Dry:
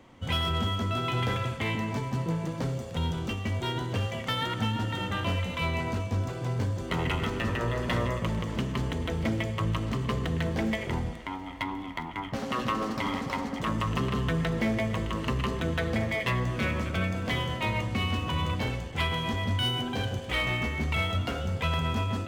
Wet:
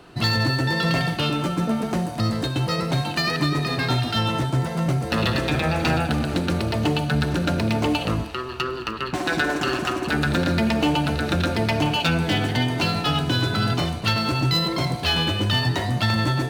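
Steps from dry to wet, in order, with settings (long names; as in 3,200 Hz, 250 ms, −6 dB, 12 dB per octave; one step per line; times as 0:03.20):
wrong playback speed 33 rpm record played at 45 rpm
level +7 dB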